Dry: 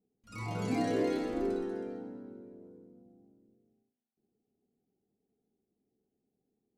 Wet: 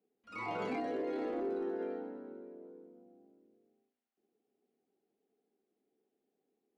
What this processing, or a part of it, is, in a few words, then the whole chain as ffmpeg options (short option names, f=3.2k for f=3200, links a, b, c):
DJ mixer with the lows and highs turned down: -filter_complex "[0:a]acrossover=split=280 3500:gain=0.0708 1 0.1[a][b][c];[a][b][c]amix=inputs=3:normalize=0,alimiter=level_in=9dB:limit=-24dB:level=0:latency=1:release=20,volume=-9dB,asettb=1/sr,asplit=3[d][e][f];[d]atrim=end=0.804[g];[e]atrim=start=0.8:end=1.79,asetpts=PTS-STARTPTS,afade=t=in:d=0.004:c=qsin,afade=t=out:st=0.986:d=0.004:c=qsin,equalizer=f=2.4k:t=o:w=2.3:g=-5[h];[f]atrim=start=1.786[i];[g][h]acrossfade=d=0.004:c1=hsin:c2=qsin[j];[j][i]acrossfade=d=0.004:c1=qsin:c2=hsin,volume=4dB"